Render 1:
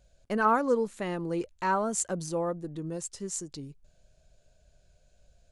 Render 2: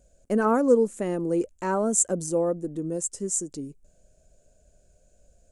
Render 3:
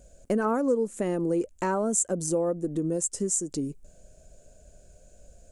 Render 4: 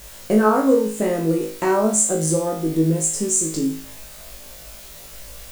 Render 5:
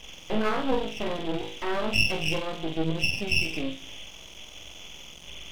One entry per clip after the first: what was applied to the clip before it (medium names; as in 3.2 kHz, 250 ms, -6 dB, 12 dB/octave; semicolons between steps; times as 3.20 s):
ten-band graphic EQ 125 Hz -4 dB, 250 Hz +6 dB, 500 Hz +5 dB, 1 kHz -5 dB, 2 kHz -3 dB, 4 kHz -11 dB, 8 kHz +10 dB; trim +2 dB
compression 3:1, threshold -33 dBFS, peak gain reduction 14.5 dB; trim +7 dB
added noise white -50 dBFS; flutter echo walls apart 3.2 m, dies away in 0.45 s; trim +5 dB
knee-point frequency compression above 1.9 kHz 4:1; half-wave rectifier; trim -5.5 dB